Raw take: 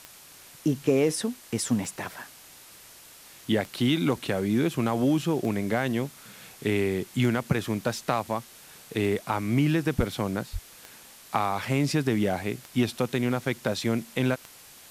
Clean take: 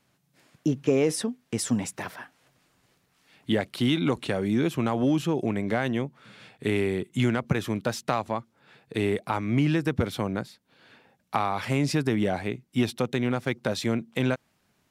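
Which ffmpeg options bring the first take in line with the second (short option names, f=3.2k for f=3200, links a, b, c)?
-filter_complex "[0:a]adeclick=t=4,asplit=3[a][b][c];[a]afade=t=out:st=9.97:d=0.02[d];[b]highpass=f=140:w=0.5412,highpass=f=140:w=1.3066,afade=t=in:st=9.97:d=0.02,afade=t=out:st=10.09:d=0.02[e];[c]afade=t=in:st=10.09:d=0.02[f];[d][e][f]amix=inputs=3:normalize=0,asplit=3[g][h][i];[g]afade=t=out:st=10.52:d=0.02[j];[h]highpass=f=140:w=0.5412,highpass=f=140:w=1.3066,afade=t=in:st=10.52:d=0.02,afade=t=out:st=10.64:d=0.02[k];[i]afade=t=in:st=10.64:d=0.02[l];[j][k][l]amix=inputs=3:normalize=0,afftdn=nr=18:nf=-50"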